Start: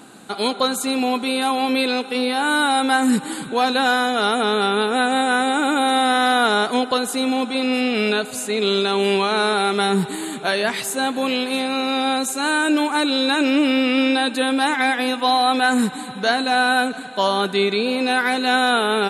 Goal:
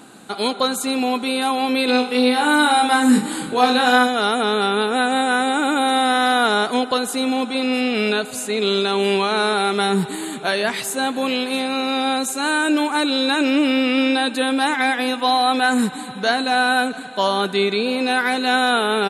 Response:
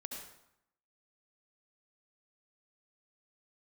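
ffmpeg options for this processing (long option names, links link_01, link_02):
-filter_complex "[0:a]asplit=3[link_01][link_02][link_03];[link_01]afade=type=out:start_time=1.87:duration=0.02[link_04];[link_02]aecho=1:1:20|44|72.8|107.4|148.8:0.631|0.398|0.251|0.158|0.1,afade=type=in:start_time=1.87:duration=0.02,afade=type=out:start_time=4.06:duration=0.02[link_05];[link_03]afade=type=in:start_time=4.06:duration=0.02[link_06];[link_04][link_05][link_06]amix=inputs=3:normalize=0"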